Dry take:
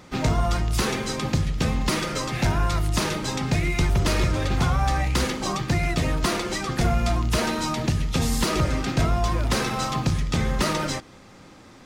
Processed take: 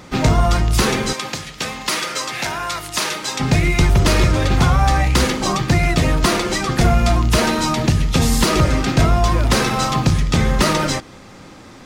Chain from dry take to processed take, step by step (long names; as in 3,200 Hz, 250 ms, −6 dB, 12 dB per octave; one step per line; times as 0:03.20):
0:01.13–0:03.40: high-pass filter 1,100 Hz 6 dB per octave
level +7.5 dB